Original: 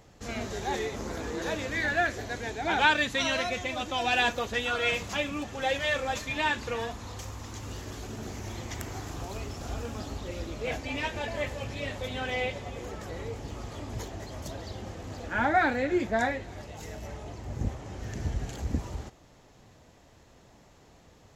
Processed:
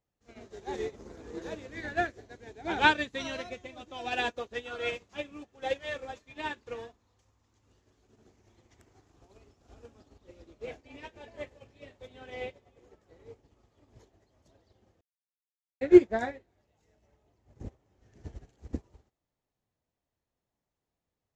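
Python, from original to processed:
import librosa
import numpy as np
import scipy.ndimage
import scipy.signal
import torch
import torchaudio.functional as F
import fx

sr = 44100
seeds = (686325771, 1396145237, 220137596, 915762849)

y = fx.bass_treble(x, sr, bass_db=4, treble_db=1, at=(0.73, 3.92))
y = fx.edit(y, sr, fx.silence(start_s=15.01, length_s=0.8), tone=tone)
y = scipy.signal.sosfilt(scipy.signal.butter(2, 8600.0, 'lowpass', fs=sr, output='sos'), y)
y = fx.dynamic_eq(y, sr, hz=390.0, q=1.3, threshold_db=-47.0, ratio=4.0, max_db=8)
y = fx.upward_expand(y, sr, threshold_db=-39.0, expansion=2.5)
y = y * 10.0 ** (5.5 / 20.0)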